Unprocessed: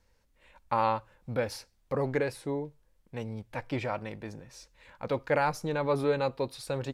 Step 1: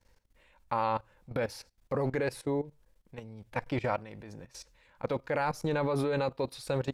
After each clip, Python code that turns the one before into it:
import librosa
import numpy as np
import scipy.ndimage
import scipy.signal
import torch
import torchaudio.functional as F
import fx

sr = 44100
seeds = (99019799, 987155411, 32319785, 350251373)

y = fx.level_steps(x, sr, step_db=17)
y = y * librosa.db_to_amplitude(5.0)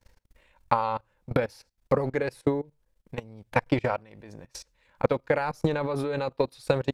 y = fx.transient(x, sr, attack_db=11, sustain_db=-6)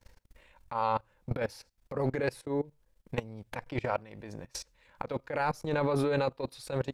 y = fx.over_compress(x, sr, threshold_db=-29.0, ratio=-1.0)
y = y * librosa.db_to_amplitude(-1.5)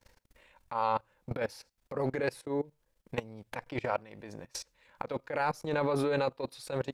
y = fx.low_shelf(x, sr, hz=120.0, db=-9.0)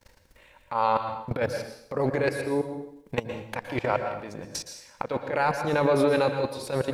y = fx.rev_plate(x, sr, seeds[0], rt60_s=0.69, hf_ratio=1.0, predelay_ms=105, drr_db=6.0)
y = y * librosa.db_to_amplitude(6.0)